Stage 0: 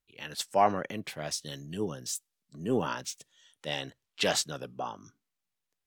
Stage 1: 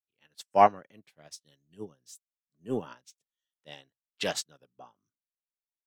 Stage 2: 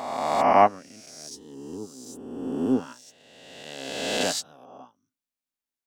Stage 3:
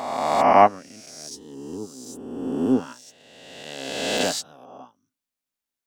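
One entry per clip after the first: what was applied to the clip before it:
upward expansion 2.5:1, over -44 dBFS; trim +6 dB
reverse spectral sustain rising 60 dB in 1.81 s; peaking EQ 260 Hz +12 dB 0.27 oct
de-esser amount 55%; trim +3 dB

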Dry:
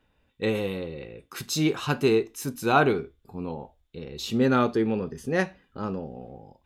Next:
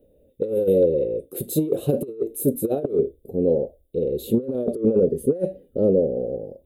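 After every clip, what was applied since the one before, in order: FFT filter 120 Hz 0 dB, 250 Hz +4 dB, 560 Hz +15 dB, 950 Hz -26 dB, 1.4 kHz -27 dB, 2.3 kHz -22 dB, 3.7 kHz -13 dB, 5.6 kHz -25 dB, 9.5 kHz +4 dB, 14 kHz +7 dB; compressor with a negative ratio -20 dBFS, ratio -0.5; trim +1 dB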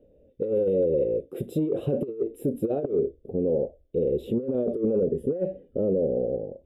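peak limiter -16.5 dBFS, peak gain reduction 9 dB; Savitzky-Golay filter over 25 samples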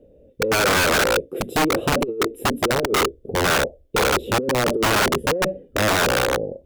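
integer overflow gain 20.5 dB; Chebyshev shaper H 2 -37 dB, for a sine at -20.5 dBFS; trim +7 dB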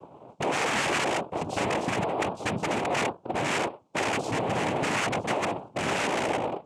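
saturation -29 dBFS, distortion -7 dB; noise-vocoded speech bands 4; trim +3.5 dB

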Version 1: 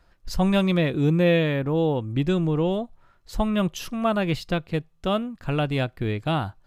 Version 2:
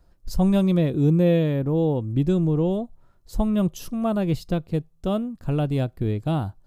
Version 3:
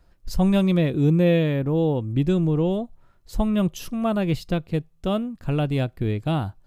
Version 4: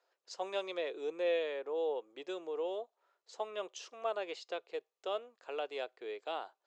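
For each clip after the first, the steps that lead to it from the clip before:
peaking EQ 2.1 kHz -14 dB 2.6 oct; trim +3 dB
peaking EQ 2.3 kHz +6.5 dB 1.5 oct
Chebyshev band-pass 420–7200 Hz, order 4; trim -9 dB

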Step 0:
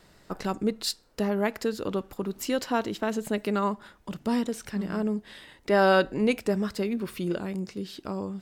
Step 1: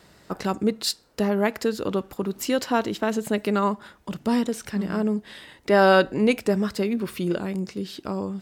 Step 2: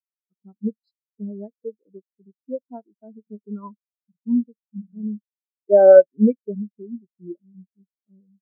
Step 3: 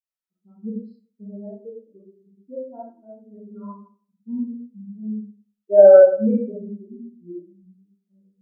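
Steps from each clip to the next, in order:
high-pass 52 Hz; trim +4 dB
spectral contrast expander 4:1; trim +5.5 dB
reverberation RT60 0.45 s, pre-delay 4 ms, DRR -8.5 dB; trim -9 dB

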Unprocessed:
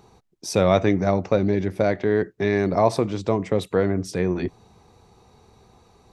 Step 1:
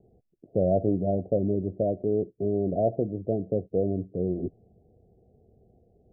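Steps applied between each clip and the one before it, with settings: steep low-pass 710 Hz 96 dB/octave; trim -5 dB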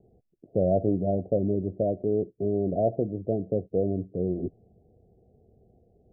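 no audible change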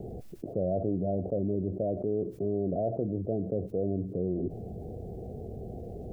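level flattener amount 70%; trim -7.5 dB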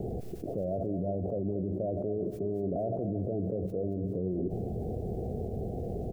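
peak limiter -30 dBFS, peak gain reduction 10.5 dB; feedback delay 227 ms, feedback 42%, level -11 dB; trim +5 dB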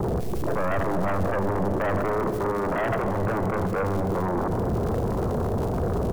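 crackle 190 per s -43 dBFS; sine folder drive 10 dB, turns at -22 dBFS; Schroeder reverb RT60 3.8 s, combs from 31 ms, DRR 10 dB

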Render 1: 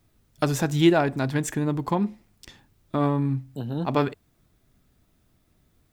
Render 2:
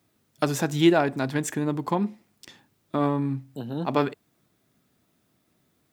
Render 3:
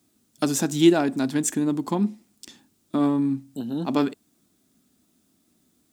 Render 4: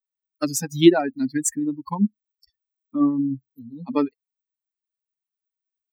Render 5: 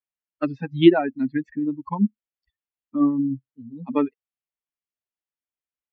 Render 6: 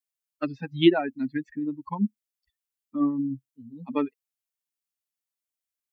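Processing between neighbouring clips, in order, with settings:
high-pass 160 Hz 12 dB/octave
ten-band graphic EQ 125 Hz -9 dB, 250 Hz +7 dB, 500 Hz -6 dB, 1 kHz -4 dB, 2 kHz -6 dB, 8 kHz +6 dB; trim +2.5 dB
expander on every frequency bin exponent 3; trim +5.5 dB
steep low-pass 3.3 kHz 48 dB/octave
treble shelf 3.3 kHz +12 dB; trim -5 dB

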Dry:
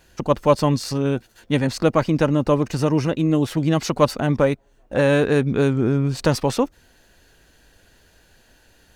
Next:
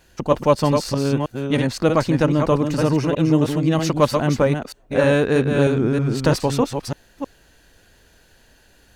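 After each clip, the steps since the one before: chunks repeated in reverse 315 ms, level -5 dB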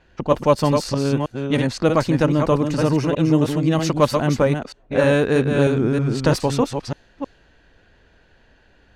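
level-controlled noise filter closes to 2.8 kHz, open at -14 dBFS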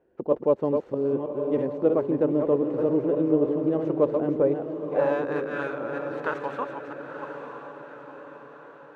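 median filter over 9 samples; band-pass sweep 420 Hz -> 1.3 kHz, 4.46–5.55 s; echo that smears into a reverb 948 ms, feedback 50%, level -8 dB

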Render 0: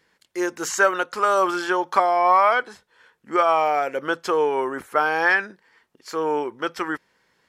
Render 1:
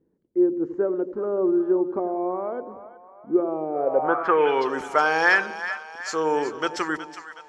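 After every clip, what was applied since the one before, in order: two-band feedback delay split 620 Hz, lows 88 ms, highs 369 ms, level -11.5 dB; low-pass sweep 330 Hz -> 6.9 kHz, 3.71–4.81 s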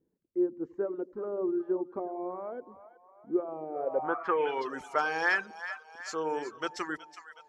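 reverb removal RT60 0.67 s; trim -8 dB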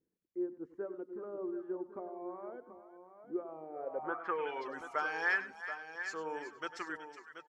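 peaking EQ 1.8 kHz +5 dB 1.2 oct; multi-tap echo 99/731 ms -15/-11 dB; trim -9 dB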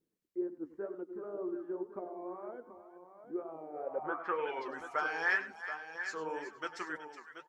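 flange 2 Hz, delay 4.5 ms, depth 9 ms, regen +55%; trim +5 dB

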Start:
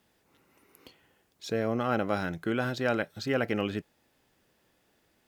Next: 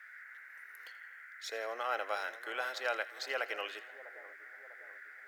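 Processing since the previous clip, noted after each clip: Bessel high-pass 790 Hz, order 6; two-band feedback delay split 1.2 kHz, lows 649 ms, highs 82 ms, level -15.5 dB; band noise 1.4–2.1 kHz -50 dBFS; trim -2 dB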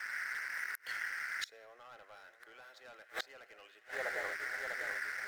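waveshaping leveller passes 3; inverted gate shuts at -26 dBFS, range -28 dB; trim +1 dB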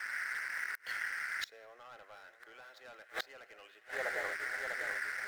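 median filter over 5 samples; trim +1.5 dB

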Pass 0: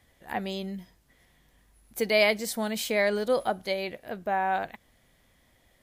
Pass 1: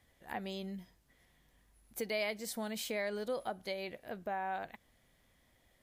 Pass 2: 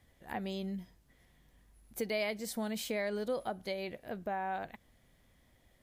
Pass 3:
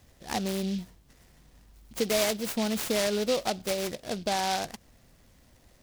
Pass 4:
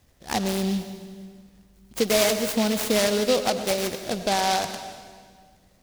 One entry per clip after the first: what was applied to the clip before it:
compression 2:1, threshold -32 dBFS, peak gain reduction 8 dB; trim -6 dB
bass shelf 390 Hz +5.5 dB
delay time shaken by noise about 3.7 kHz, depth 0.1 ms; trim +8 dB
companding laws mixed up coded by A; reverberation RT60 1.8 s, pre-delay 92 ms, DRR 8.5 dB; trim +6 dB

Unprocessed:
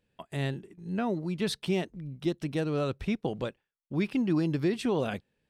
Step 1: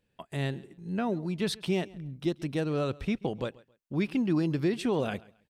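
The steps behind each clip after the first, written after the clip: feedback delay 135 ms, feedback 26%, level -22.5 dB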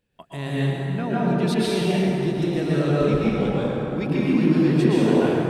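plate-style reverb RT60 4 s, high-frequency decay 0.45×, pre-delay 105 ms, DRR -8.5 dB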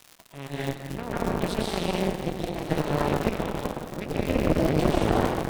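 crackle 460 per s -27 dBFS; Chebyshev shaper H 3 -19 dB, 4 -6 dB, 5 -22 dB, 7 -21 dB, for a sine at -5.5 dBFS; trim -6.5 dB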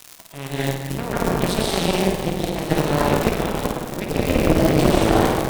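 treble shelf 4.7 kHz +6.5 dB; on a send: flutter echo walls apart 8.9 m, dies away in 0.41 s; on the sum: trim +5.5 dB

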